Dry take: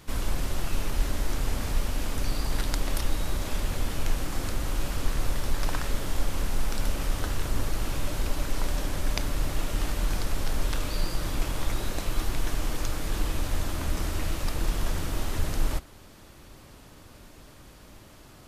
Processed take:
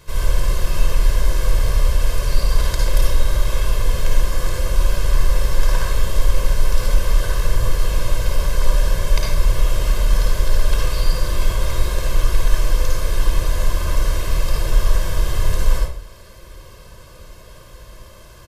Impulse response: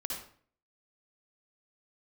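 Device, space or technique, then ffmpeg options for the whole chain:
microphone above a desk: -filter_complex "[0:a]aecho=1:1:1.9:0.88[s0];[1:a]atrim=start_sample=2205[s1];[s0][s1]afir=irnorm=-1:irlink=0,volume=1.41"

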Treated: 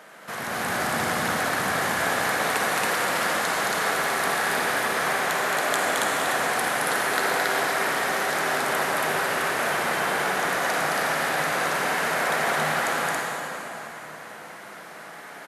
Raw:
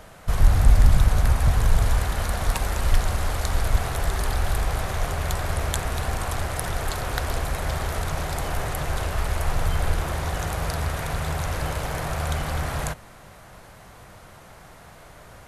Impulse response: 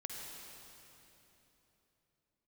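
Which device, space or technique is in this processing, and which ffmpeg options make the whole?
stadium PA: -filter_complex "[0:a]highpass=f=210:w=0.5412,highpass=f=210:w=1.3066,equalizer=f=1700:t=o:w=1.1:g=6.5,aecho=1:1:218.7|277:0.708|0.891[s0];[1:a]atrim=start_sample=2205[s1];[s0][s1]afir=irnorm=-1:irlink=0,volume=1.26"

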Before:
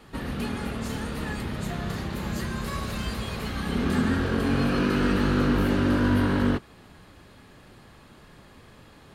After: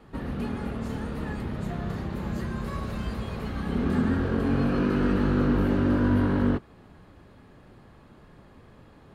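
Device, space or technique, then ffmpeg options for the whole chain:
through cloth: -af "highshelf=f=2000:g=-12.5"

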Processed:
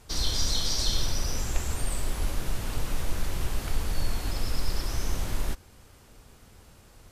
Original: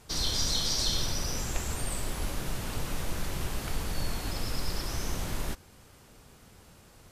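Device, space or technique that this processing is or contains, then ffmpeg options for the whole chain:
low shelf boost with a cut just above: -af "lowshelf=f=77:g=7,equalizer=f=160:t=o:w=0.57:g=-3.5"

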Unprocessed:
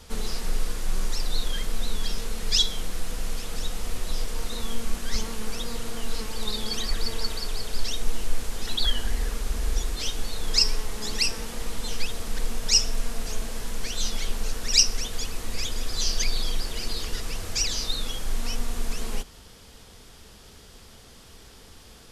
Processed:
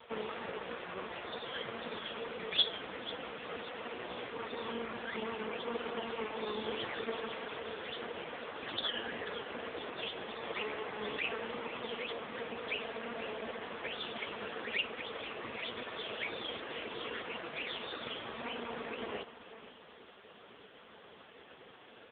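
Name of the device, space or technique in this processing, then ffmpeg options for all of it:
satellite phone: -af "highpass=330,lowpass=3000,aecho=1:1:492:0.178,volume=1.78" -ar 8000 -c:a libopencore_amrnb -b:a 4750

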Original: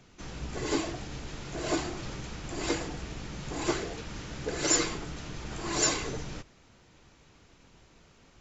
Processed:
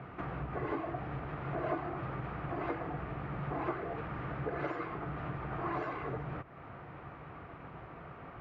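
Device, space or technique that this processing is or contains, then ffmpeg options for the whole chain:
bass amplifier: -af "acompressor=threshold=0.00398:ratio=4,highpass=72,equalizer=f=140:t=q:w=4:g=5,equalizer=f=220:t=q:w=4:g=-5,equalizer=f=710:t=q:w=4:g=7,equalizer=f=1200:t=q:w=4:g=8,lowpass=f=2100:w=0.5412,lowpass=f=2100:w=1.3066,volume=3.35"

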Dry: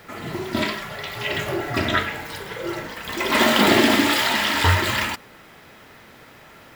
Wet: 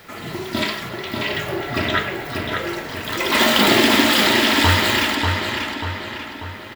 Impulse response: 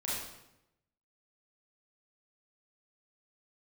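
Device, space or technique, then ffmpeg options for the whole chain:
presence and air boost: -filter_complex "[0:a]equalizer=f=3900:t=o:w=1.5:g=4,highshelf=f=11000:g=5.5,asettb=1/sr,asplit=3[s0][s1][s2];[s0]atrim=end=0.894[s3];[s1]atrim=start=0.89:end=2.52,asetpts=PTS-STARTPTS,afade=t=in:d=0.004:c=qsin,afade=t=out:st=1.626:d=0.004:c=qsin,equalizer=f=7600:t=o:w=2.4:g=-5[s4];[s2]atrim=start=2.516[s5];[s3][s4]acrossfade=d=0.004:c1=hsin:c2=qsin[s6];[s6][s5]acrossfade=d=0.004:c1=qsin:c2=hsin,asplit=2[s7][s8];[s8]adelay=590,lowpass=f=4300:p=1,volume=0.631,asplit=2[s9][s10];[s10]adelay=590,lowpass=f=4300:p=1,volume=0.52,asplit=2[s11][s12];[s12]adelay=590,lowpass=f=4300:p=1,volume=0.52,asplit=2[s13][s14];[s14]adelay=590,lowpass=f=4300:p=1,volume=0.52,asplit=2[s15][s16];[s16]adelay=590,lowpass=f=4300:p=1,volume=0.52,asplit=2[s17][s18];[s18]adelay=590,lowpass=f=4300:p=1,volume=0.52,asplit=2[s19][s20];[s20]adelay=590,lowpass=f=4300:p=1,volume=0.52[s21];[s7][s9][s11][s13][s15][s17][s19][s21]amix=inputs=8:normalize=0"

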